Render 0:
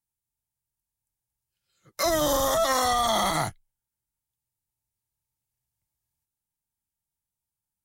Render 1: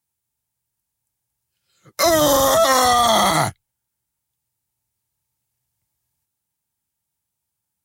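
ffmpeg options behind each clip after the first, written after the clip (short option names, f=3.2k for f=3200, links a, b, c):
-af "highpass=67,volume=8.5dB"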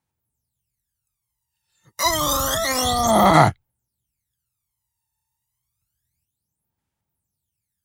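-af "aphaser=in_gain=1:out_gain=1:delay=1.1:decay=0.79:speed=0.29:type=sinusoidal,volume=-6.5dB"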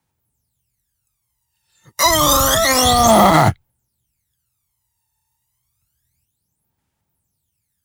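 -filter_complex "[0:a]acrossover=split=210|1100[a][b][c];[b]acrusher=bits=3:mode=log:mix=0:aa=0.000001[d];[a][d][c]amix=inputs=3:normalize=0,alimiter=level_in=8.5dB:limit=-1dB:release=50:level=0:latency=1,volume=-1dB"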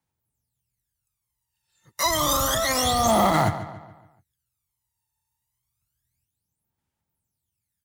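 -filter_complex "[0:a]asplit=2[a][b];[b]adelay=142,lowpass=f=4k:p=1,volume=-12dB,asplit=2[c][d];[d]adelay=142,lowpass=f=4k:p=1,volume=0.46,asplit=2[e][f];[f]adelay=142,lowpass=f=4k:p=1,volume=0.46,asplit=2[g][h];[h]adelay=142,lowpass=f=4k:p=1,volume=0.46,asplit=2[i][j];[j]adelay=142,lowpass=f=4k:p=1,volume=0.46[k];[a][c][e][g][i][k]amix=inputs=6:normalize=0,volume=-9dB"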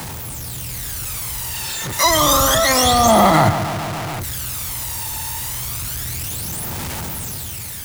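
-af "aeval=exprs='val(0)+0.5*0.0531*sgn(val(0))':c=same,dynaudnorm=f=220:g=7:m=3.5dB,volume=2.5dB"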